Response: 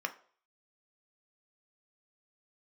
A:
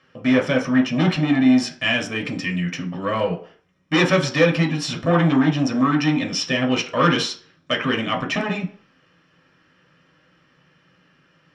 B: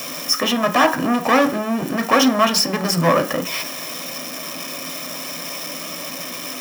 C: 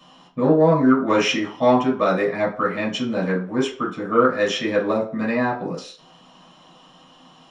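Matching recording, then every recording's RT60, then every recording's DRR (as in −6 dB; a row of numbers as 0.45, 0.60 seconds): B; 0.50, 0.50, 0.50 seconds; 1.0, 6.0, −6.5 decibels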